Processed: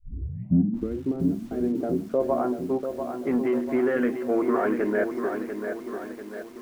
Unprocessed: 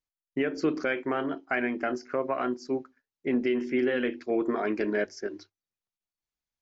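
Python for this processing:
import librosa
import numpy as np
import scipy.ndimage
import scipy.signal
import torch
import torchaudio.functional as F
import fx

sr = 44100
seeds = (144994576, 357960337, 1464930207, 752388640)

p1 = fx.tape_start_head(x, sr, length_s=1.01)
p2 = np.clip(p1, -10.0 ** (-26.0 / 20.0), 10.0 ** (-26.0 / 20.0))
p3 = p1 + (p2 * 10.0 ** (-8.0 / 20.0))
p4 = fx.filter_sweep_lowpass(p3, sr, from_hz=280.0, to_hz=1300.0, start_s=1.4, end_s=2.91, q=1.5)
p5 = p4 + fx.echo_single(p4, sr, ms=1083, db=-21.0, dry=0)
y = fx.echo_crushed(p5, sr, ms=692, feedback_pct=55, bits=8, wet_db=-7)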